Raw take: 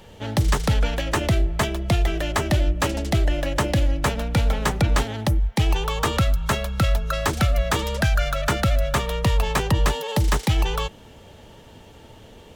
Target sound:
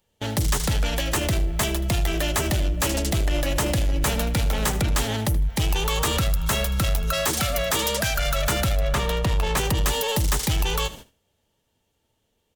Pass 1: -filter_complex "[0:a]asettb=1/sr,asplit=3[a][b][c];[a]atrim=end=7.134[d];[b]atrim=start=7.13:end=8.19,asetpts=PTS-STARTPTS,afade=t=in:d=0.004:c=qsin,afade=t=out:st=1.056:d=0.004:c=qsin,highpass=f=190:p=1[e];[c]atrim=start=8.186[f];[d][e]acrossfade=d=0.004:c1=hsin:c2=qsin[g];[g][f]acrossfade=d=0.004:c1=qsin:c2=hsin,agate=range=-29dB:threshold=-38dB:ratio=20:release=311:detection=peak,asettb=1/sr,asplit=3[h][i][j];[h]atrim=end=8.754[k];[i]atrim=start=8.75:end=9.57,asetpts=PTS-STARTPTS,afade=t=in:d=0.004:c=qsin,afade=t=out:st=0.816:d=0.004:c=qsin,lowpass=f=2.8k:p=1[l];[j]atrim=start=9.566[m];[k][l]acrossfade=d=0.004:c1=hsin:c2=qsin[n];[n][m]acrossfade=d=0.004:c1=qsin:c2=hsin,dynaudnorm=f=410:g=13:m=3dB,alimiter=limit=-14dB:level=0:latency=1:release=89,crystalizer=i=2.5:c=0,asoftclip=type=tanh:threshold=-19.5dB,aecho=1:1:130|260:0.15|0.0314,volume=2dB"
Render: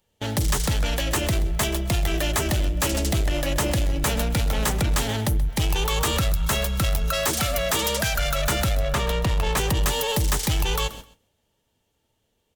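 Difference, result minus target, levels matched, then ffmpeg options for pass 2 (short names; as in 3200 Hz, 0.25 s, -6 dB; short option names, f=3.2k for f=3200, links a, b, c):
echo 52 ms late
-filter_complex "[0:a]asettb=1/sr,asplit=3[a][b][c];[a]atrim=end=7.134[d];[b]atrim=start=7.13:end=8.19,asetpts=PTS-STARTPTS,afade=t=in:d=0.004:c=qsin,afade=t=out:st=1.056:d=0.004:c=qsin,highpass=f=190:p=1[e];[c]atrim=start=8.186[f];[d][e]acrossfade=d=0.004:c1=hsin:c2=qsin[g];[g][f]acrossfade=d=0.004:c1=qsin:c2=hsin,agate=range=-29dB:threshold=-38dB:ratio=20:release=311:detection=peak,asettb=1/sr,asplit=3[h][i][j];[h]atrim=end=8.754[k];[i]atrim=start=8.75:end=9.57,asetpts=PTS-STARTPTS,afade=t=in:d=0.004:c=qsin,afade=t=out:st=0.816:d=0.004:c=qsin,lowpass=f=2.8k:p=1[l];[j]atrim=start=9.566[m];[k][l]acrossfade=d=0.004:c1=hsin:c2=qsin[n];[n][m]acrossfade=d=0.004:c1=qsin:c2=hsin,dynaudnorm=f=410:g=13:m=3dB,alimiter=limit=-14dB:level=0:latency=1:release=89,crystalizer=i=2.5:c=0,asoftclip=type=tanh:threshold=-19.5dB,aecho=1:1:78|156:0.15|0.0314,volume=2dB"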